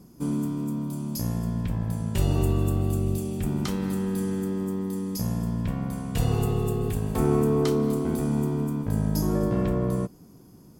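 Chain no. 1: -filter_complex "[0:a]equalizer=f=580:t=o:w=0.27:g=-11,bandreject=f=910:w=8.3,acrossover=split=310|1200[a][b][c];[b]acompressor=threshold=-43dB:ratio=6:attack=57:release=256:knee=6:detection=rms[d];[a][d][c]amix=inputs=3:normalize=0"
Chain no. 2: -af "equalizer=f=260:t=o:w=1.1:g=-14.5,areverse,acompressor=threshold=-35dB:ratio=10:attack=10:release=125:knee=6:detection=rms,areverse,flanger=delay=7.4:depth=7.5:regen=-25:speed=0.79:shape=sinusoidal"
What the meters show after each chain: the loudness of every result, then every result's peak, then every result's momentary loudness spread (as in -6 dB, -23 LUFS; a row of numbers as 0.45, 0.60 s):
-28.0, -44.0 LUFS; -12.5, -31.0 dBFS; 5, 3 LU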